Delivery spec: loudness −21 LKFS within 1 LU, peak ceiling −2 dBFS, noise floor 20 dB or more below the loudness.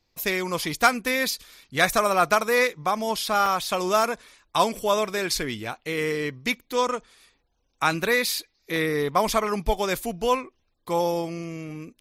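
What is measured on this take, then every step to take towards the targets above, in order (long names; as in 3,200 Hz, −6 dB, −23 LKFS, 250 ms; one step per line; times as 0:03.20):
number of dropouts 2; longest dropout 1.7 ms; integrated loudness −24.5 LKFS; sample peak −4.5 dBFS; target loudness −21.0 LKFS
→ repair the gap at 0:03.46/0:08.76, 1.7 ms
level +3.5 dB
brickwall limiter −2 dBFS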